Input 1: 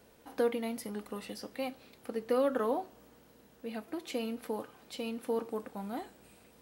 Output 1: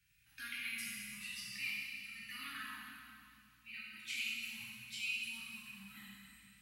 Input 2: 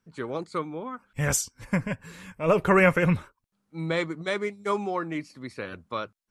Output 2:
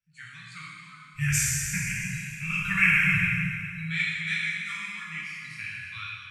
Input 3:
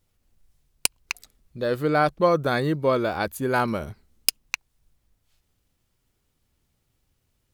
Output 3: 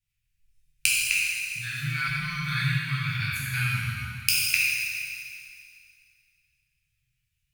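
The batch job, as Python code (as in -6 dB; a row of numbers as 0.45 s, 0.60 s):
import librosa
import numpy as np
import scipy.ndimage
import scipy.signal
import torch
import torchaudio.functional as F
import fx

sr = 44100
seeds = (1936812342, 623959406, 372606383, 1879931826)

y = scipy.signal.sosfilt(scipy.signal.cheby1(3, 1.0, [150.0, 1700.0], 'bandstop', fs=sr, output='sos'), x)
y = fx.peak_eq(y, sr, hz=2500.0, db=11.5, octaves=0.3)
y = fx.noise_reduce_blind(y, sr, reduce_db=9)
y = fx.rev_plate(y, sr, seeds[0], rt60_s=2.3, hf_ratio=1.0, predelay_ms=0, drr_db=-7.5)
y = F.gain(torch.from_numpy(y), -5.0).numpy()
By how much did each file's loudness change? -6.5 LU, +1.0 LU, -1.0 LU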